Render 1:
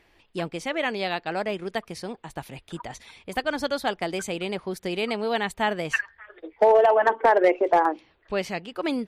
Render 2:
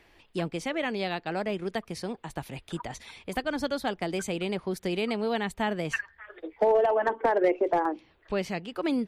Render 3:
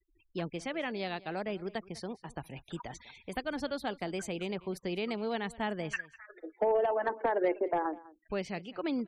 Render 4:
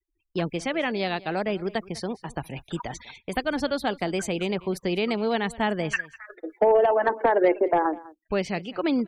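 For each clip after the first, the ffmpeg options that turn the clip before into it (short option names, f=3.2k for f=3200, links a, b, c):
-filter_complex "[0:a]acrossover=split=350[a][b];[b]acompressor=threshold=-41dB:ratio=1.5[c];[a][c]amix=inputs=2:normalize=0,volume=1.5dB"
-af "afftfilt=real='re*gte(hypot(re,im),0.00501)':imag='im*gte(hypot(re,im),0.00501)':win_size=1024:overlap=0.75,aecho=1:1:200:0.0944,volume=-5.5dB"
-af "agate=range=-17dB:threshold=-53dB:ratio=16:detection=peak,volume=9dB"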